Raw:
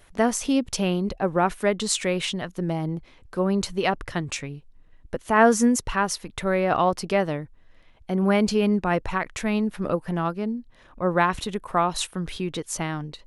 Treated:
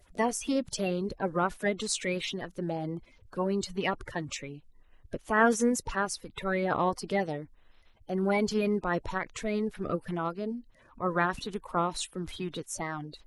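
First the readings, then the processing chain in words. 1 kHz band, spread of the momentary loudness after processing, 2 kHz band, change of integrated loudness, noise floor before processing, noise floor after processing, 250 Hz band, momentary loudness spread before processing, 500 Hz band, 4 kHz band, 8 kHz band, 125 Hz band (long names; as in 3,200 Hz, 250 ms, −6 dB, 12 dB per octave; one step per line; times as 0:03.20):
−6.5 dB, 10 LU, −4.5 dB, −6.5 dB, −54 dBFS, −60 dBFS, −7.5 dB, 10 LU, −6.0 dB, −7.0 dB, −6.5 dB, −7.5 dB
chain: spectral magnitudes quantised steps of 30 dB
level −6 dB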